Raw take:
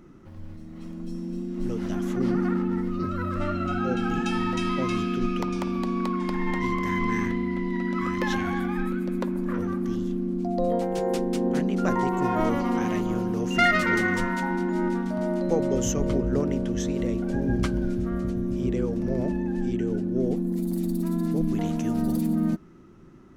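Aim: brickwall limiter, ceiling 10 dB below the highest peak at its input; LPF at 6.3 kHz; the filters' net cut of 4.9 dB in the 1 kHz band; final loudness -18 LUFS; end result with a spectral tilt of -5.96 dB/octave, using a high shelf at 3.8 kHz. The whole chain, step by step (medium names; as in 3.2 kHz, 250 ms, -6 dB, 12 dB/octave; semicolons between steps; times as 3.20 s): low-pass 6.3 kHz; peaking EQ 1 kHz -6.5 dB; treble shelf 3.8 kHz -4.5 dB; trim +11 dB; peak limiter -9 dBFS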